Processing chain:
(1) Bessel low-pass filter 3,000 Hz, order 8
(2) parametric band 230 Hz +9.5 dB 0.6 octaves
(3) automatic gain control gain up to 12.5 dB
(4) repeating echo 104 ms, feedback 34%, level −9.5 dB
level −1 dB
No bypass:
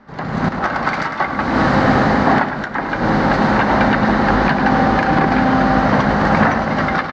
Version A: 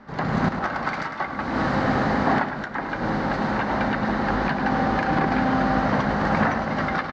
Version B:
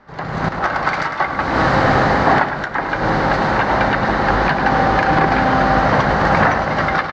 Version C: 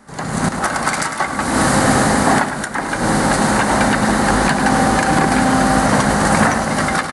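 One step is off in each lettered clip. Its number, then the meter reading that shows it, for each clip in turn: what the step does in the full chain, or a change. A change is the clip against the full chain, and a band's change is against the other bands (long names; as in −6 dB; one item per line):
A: 3, change in integrated loudness −8.0 LU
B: 2, 250 Hz band −6.0 dB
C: 1, 4 kHz band +5.5 dB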